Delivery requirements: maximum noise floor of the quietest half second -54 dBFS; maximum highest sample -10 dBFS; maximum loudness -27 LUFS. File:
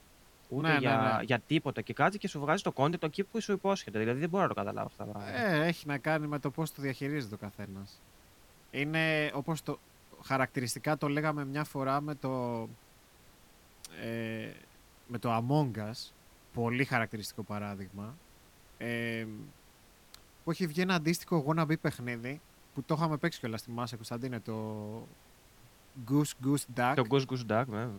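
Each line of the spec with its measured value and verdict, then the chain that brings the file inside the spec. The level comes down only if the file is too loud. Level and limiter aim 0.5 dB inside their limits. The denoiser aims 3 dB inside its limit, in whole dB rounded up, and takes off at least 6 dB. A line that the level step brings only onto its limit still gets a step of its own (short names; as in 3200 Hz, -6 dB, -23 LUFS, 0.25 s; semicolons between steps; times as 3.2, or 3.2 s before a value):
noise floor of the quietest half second -60 dBFS: OK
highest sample -12.5 dBFS: OK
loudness -33.0 LUFS: OK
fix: none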